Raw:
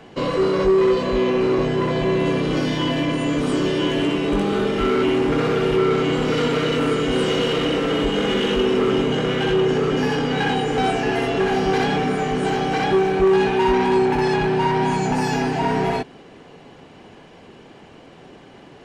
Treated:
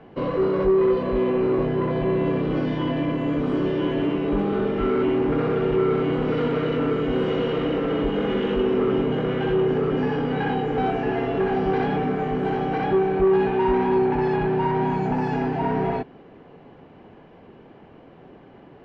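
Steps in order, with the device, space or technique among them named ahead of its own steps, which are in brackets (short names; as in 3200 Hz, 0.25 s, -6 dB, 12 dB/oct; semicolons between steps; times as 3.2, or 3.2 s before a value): phone in a pocket (LPF 3300 Hz 12 dB/oct; high shelf 2200 Hz -12 dB); gain -2 dB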